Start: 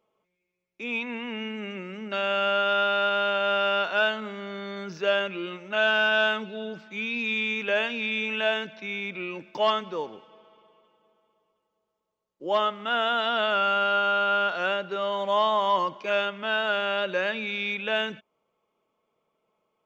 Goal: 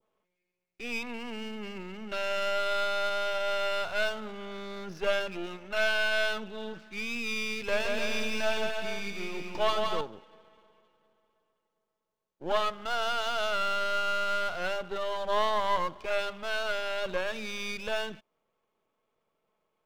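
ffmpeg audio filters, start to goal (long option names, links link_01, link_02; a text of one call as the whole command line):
ffmpeg -i in.wav -filter_complex "[0:a]aeval=exprs='if(lt(val(0),0),0.251*val(0),val(0))':channel_layout=same,asettb=1/sr,asplit=3[link_01][link_02][link_03];[link_01]atrim=end=7.554[link_04];[link_02]atrim=start=7.55:end=10.01,asetpts=PTS-STARTPTS,afade=type=in:duration=0.004:curve=qsin,afade=type=out:start_time=2.456:duration=0.004:curve=qsin,aecho=1:1:170|297.5|393.1|464.8|518.6:0.631|0.398|0.251|0.158|0.1,atrim=end_sample=108486[link_05];[link_03]atrim=start=10.006[link_06];[link_04][link_05]acrossfade=duration=0.004:curve1=hsin:curve2=qsin[link_07];[link_07][link_06]acrossfade=duration=0.004:curve1=qsin:curve2=hsin,adynamicequalizer=threshold=0.00562:dfrequency=2100:dqfactor=1.1:tfrequency=2100:tqfactor=1.1:attack=5:release=100:ratio=0.375:range=2:mode=cutabove:tftype=bell" out.wav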